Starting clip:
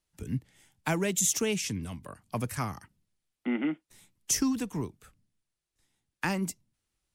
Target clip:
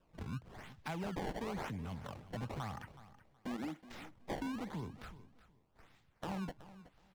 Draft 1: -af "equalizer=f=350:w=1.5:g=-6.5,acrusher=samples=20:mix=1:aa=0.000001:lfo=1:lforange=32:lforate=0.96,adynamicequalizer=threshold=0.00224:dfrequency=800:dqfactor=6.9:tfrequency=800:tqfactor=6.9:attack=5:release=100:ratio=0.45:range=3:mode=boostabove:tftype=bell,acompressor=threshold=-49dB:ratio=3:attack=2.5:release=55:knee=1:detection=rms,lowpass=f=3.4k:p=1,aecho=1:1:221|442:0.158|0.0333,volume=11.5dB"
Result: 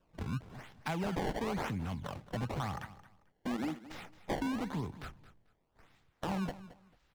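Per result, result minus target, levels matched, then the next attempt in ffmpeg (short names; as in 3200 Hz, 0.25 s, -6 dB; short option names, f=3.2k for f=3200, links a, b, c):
echo 0.151 s early; compressor: peak gain reduction -5.5 dB
-af "equalizer=f=350:w=1.5:g=-6.5,acrusher=samples=20:mix=1:aa=0.000001:lfo=1:lforange=32:lforate=0.96,adynamicequalizer=threshold=0.00224:dfrequency=800:dqfactor=6.9:tfrequency=800:tqfactor=6.9:attack=5:release=100:ratio=0.45:range=3:mode=boostabove:tftype=bell,acompressor=threshold=-49dB:ratio=3:attack=2.5:release=55:knee=1:detection=rms,lowpass=f=3.4k:p=1,aecho=1:1:372|744:0.158|0.0333,volume=11.5dB"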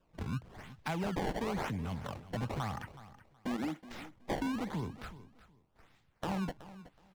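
compressor: peak gain reduction -5.5 dB
-af "equalizer=f=350:w=1.5:g=-6.5,acrusher=samples=20:mix=1:aa=0.000001:lfo=1:lforange=32:lforate=0.96,adynamicequalizer=threshold=0.00224:dfrequency=800:dqfactor=6.9:tfrequency=800:tqfactor=6.9:attack=5:release=100:ratio=0.45:range=3:mode=boostabove:tftype=bell,acompressor=threshold=-57dB:ratio=3:attack=2.5:release=55:knee=1:detection=rms,lowpass=f=3.4k:p=1,aecho=1:1:372|744:0.158|0.0333,volume=11.5dB"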